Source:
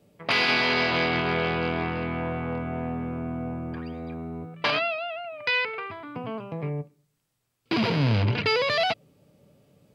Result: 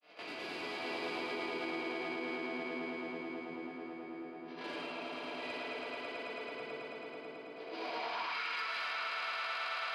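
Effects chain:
peak hold with a rise ahead of every peak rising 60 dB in 0.44 s
granular cloud 100 ms, grains 20 per second, spray 100 ms, pitch spread up and down by 0 semitones
first difference
convolution reverb RT60 2.9 s, pre-delay 3 ms, DRR −6.5 dB
gain into a clipping stage and back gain 26 dB
high-pass filter 83 Hz
high-shelf EQ 4,600 Hz +4.5 dB
echo that builds up and dies away 109 ms, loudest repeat 5, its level −6 dB
band-pass filter sweep 340 Hz → 1,300 Hz, 0:07.52–0:08.41
brickwall limiter −37 dBFS, peak gain reduction 11 dB
level +7.5 dB

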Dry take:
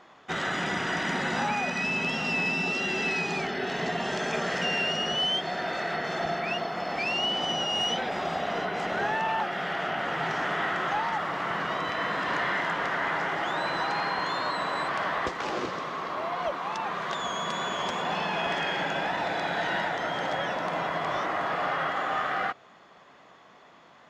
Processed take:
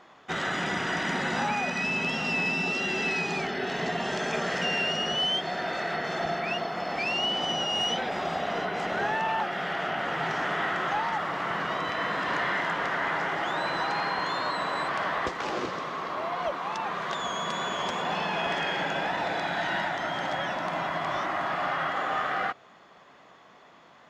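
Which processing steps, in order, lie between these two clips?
0:19.40–0:21.93: parametric band 470 Hz −12.5 dB 0.22 octaves

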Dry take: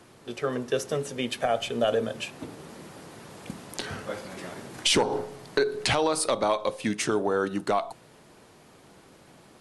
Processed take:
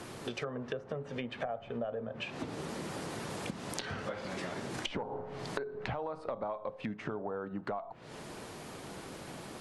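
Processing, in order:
treble cut that deepens with the level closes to 1,100 Hz, closed at −25 dBFS
dynamic equaliser 340 Hz, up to −8 dB, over −42 dBFS, Q 1.9
downward compressor 6 to 1, threshold −44 dBFS, peak gain reduction 20.5 dB
level +8 dB

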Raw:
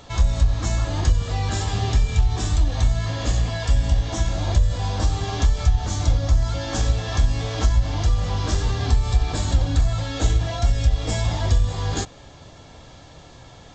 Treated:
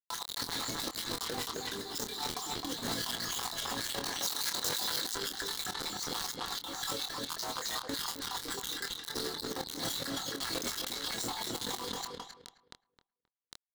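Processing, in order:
time-frequency cells dropped at random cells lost 66%
high-pass filter 250 Hz 24 dB per octave
0:07.26–0:07.88: frequency shifter +200 Hz
auto-filter notch saw down 1.8 Hz 490–6,100 Hz
log-companded quantiser 2 bits
thirty-one-band graphic EQ 630 Hz −10 dB, 2,500 Hz −11 dB, 4,000 Hz +10 dB
compressor whose output falls as the input rises −35 dBFS, ratio −0.5
double-tracking delay 25 ms −8.5 dB
feedback echo with a low-pass in the loop 264 ms, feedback 23%, low-pass 2,900 Hz, level −3.5 dB
brickwall limiter −26.5 dBFS, peak gain reduction 12.5 dB
0:04.19–0:05.15: spectral tilt +1.5 dB per octave
level +2.5 dB

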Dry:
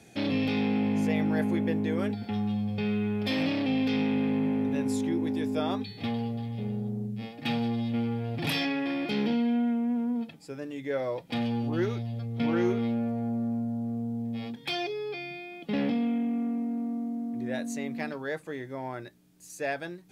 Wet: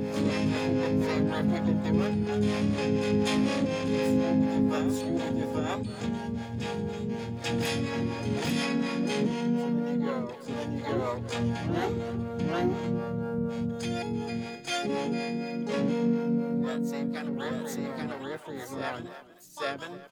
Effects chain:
low-shelf EQ 69 Hz +3.5 dB
far-end echo of a speakerphone 310 ms, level −13 dB
pitch-shifted copies added −7 semitones −12 dB, −4 semitones −9 dB, +12 semitones −5 dB
on a send: backwards echo 842 ms −3.5 dB
on the sum: two-band tremolo in antiphase 4.1 Hz, depth 70%, crossover 430 Hz

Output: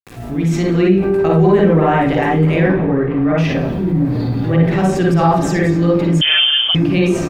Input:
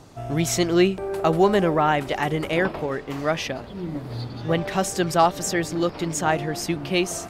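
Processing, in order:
fade in at the beginning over 0.94 s
spectral tilt −2.5 dB per octave
mains-hum notches 50/100/150/200/250/300/350 Hz
bit-depth reduction 10 bits, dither none
0:02.67–0:03.38: high-frequency loss of the air 410 metres
single-tap delay 204 ms −22 dB
convolution reverb RT60 0.45 s, pre-delay 45 ms, DRR −3 dB
0:06.21–0:06.75: voice inversion scrambler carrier 3,300 Hz
envelope flattener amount 50%
level −5 dB

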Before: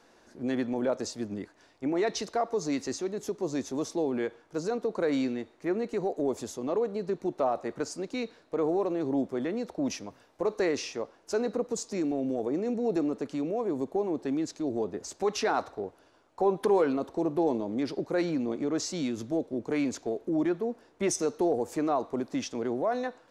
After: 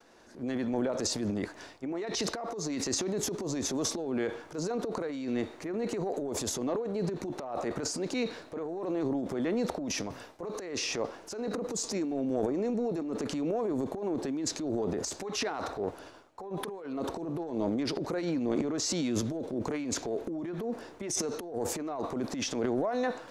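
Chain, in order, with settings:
downward expander −58 dBFS
compressor whose output falls as the input rises −31 dBFS, ratio −0.5
transient designer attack −5 dB, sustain +10 dB

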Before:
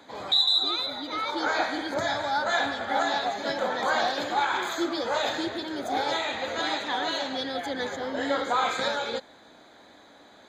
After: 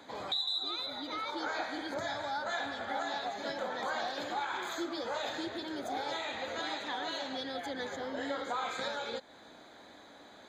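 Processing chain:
downward compressor 2 to 1, threshold −38 dBFS, peak gain reduction 11 dB
level −1.5 dB

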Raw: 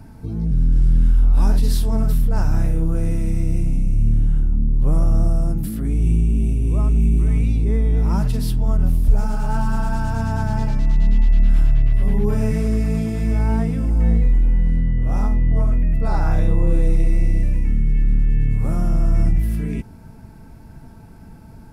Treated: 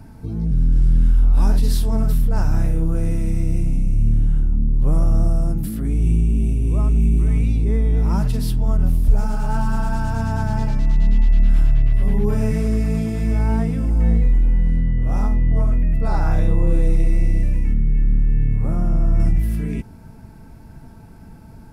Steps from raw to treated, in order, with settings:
0:17.73–0:19.20: high-shelf EQ 2,300 Hz −9.5 dB

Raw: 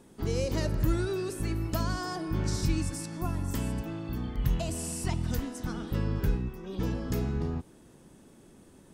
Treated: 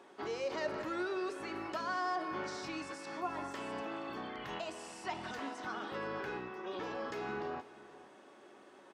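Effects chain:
high-pass filter 750 Hz 12 dB per octave
in parallel at −2 dB: compressor whose output falls as the input rises −48 dBFS
on the sum: head-to-tape spacing loss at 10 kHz 26 dB
single-tap delay 476 ms −18.5 dB
on a send at −7 dB: convolution reverb RT60 0.10 s, pre-delay 3 ms
on the sum: level +2.5 dB

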